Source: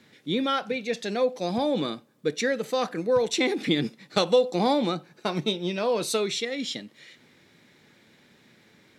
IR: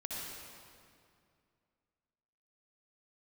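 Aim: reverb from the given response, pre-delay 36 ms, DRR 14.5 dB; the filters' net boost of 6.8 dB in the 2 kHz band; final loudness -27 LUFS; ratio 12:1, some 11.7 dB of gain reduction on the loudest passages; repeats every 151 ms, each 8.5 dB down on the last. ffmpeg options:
-filter_complex "[0:a]equalizer=f=2000:t=o:g=8,acompressor=threshold=0.0501:ratio=12,aecho=1:1:151|302|453|604:0.376|0.143|0.0543|0.0206,asplit=2[s0][s1];[1:a]atrim=start_sample=2205,adelay=36[s2];[s1][s2]afir=irnorm=-1:irlink=0,volume=0.168[s3];[s0][s3]amix=inputs=2:normalize=0,volume=1.5"

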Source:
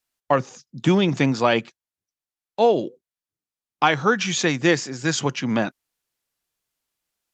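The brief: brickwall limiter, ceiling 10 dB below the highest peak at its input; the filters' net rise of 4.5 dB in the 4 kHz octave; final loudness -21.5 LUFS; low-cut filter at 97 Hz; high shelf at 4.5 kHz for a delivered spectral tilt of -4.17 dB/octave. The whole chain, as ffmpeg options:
-af "highpass=97,equalizer=f=4000:t=o:g=7.5,highshelf=f=4500:g=-3.5,volume=1.33,alimiter=limit=0.335:level=0:latency=1"

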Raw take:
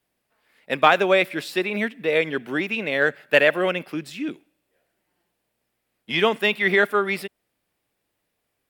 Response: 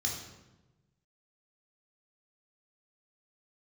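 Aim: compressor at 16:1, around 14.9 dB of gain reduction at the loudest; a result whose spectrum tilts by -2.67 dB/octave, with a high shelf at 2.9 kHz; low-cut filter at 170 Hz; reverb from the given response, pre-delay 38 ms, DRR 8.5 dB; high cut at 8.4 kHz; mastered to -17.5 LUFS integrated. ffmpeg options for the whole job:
-filter_complex "[0:a]highpass=170,lowpass=8400,highshelf=f=2900:g=-6,acompressor=threshold=0.0447:ratio=16,asplit=2[s0][s1];[1:a]atrim=start_sample=2205,adelay=38[s2];[s1][s2]afir=irnorm=-1:irlink=0,volume=0.251[s3];[s0][s3]amix=inputs=2:normalize=0,volume=5.31"

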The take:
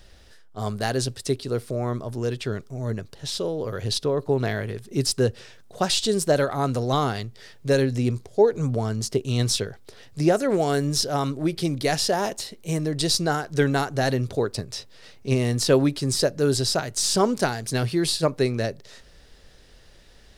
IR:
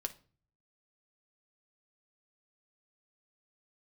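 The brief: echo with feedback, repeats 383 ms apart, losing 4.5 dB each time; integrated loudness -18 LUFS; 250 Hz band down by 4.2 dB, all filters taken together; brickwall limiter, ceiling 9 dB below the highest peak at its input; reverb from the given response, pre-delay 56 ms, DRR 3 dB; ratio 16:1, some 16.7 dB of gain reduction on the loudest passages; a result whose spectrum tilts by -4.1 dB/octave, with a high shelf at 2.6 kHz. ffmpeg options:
-filter_complex "[0:a]equalizer=f=250:t=o:g=-6,highshelf=f=2600:g=7,acompressor=threshold=0.0282:ratio=16,alimiter=level_in=1.12:limit=0.0631:level=0:latency=1,volume=0.891,aecho=1:1:383|766|1149|1532|1915|2298|2681|3064|3447:0.596|0.357|0.214|0.129|0.0772|0.0463|0.0278|0.0167|0.01,asplit=2[s0][s1];[1:a]atrim=start_sample=2205,adelay=56[s2];[s1][s2]afir=irnorm=-1:irlink=0,volume=0.75[s3];[s0][s3]amix=inputs=2:normalize=0,volume=5.62"

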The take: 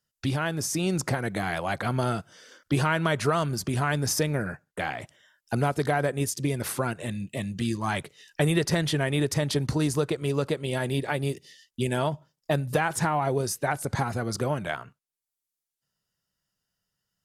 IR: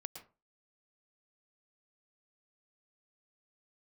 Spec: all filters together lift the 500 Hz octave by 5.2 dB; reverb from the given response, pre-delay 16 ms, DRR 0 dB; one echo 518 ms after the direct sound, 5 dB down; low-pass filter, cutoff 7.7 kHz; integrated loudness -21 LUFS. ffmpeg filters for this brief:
-filter_complex "[0:a]lowpass=7700,equalizer=f=500:t=o:g=6.5,aecho=1:1:518:0.562,asplit=2[s0][s1];[1:a]atrim=start_sample=2205,adelay=16[s2];[s1][s2]afir=irnorm=-1:irlink=0,volume=1.5[s3];[s0][s3]amix=inputs=2:normalize=0,volume=1.06"

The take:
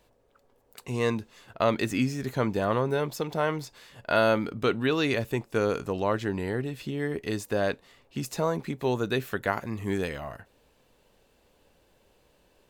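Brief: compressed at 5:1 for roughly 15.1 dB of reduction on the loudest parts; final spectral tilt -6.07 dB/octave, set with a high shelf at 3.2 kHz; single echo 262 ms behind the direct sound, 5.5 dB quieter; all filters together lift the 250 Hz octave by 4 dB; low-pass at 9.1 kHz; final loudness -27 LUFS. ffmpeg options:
-af "lowpass=9100,equalizer=f=250:t=o:g=5,highshelf=f=3200:g=-5,acompressor=threshold=0.0178:ratio=5,aecho=1:1:262:0.531,volume=3.55"

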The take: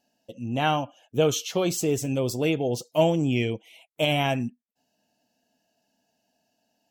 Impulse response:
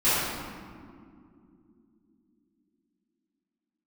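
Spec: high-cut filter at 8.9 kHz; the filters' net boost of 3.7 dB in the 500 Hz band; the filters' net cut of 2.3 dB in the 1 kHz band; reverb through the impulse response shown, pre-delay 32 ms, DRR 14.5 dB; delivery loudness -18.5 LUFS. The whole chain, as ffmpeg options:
-filter_complex "[0:a]lowpass=8900,equalizer=f=500:t=o:g=6.5,equalizer=f=1000:t=o:g=-7.5,asplit=2[s0][s1];[1:a]atrim=start_sample=2205,adelay=32[s2];[s1][s2]afir=irnorm=-1:irlink=0,volume=0.0282[s3];[s0][s3]amix=inputs=2:normalize=0,volume=1.78"

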